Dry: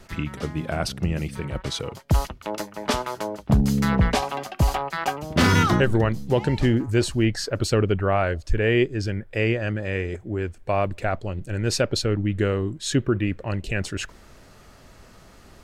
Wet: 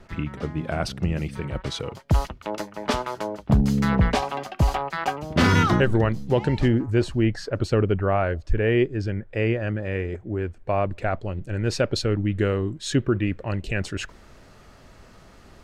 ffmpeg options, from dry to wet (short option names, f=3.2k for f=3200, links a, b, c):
-af "asetnsamples=n=441:p=0,asendcmd='0.65 lowpass f 4600;6.68 lowpass f 1900;10.96 lowpass f 3100;11.83 lowpass f 5600',lowpass=f=2k:p=1"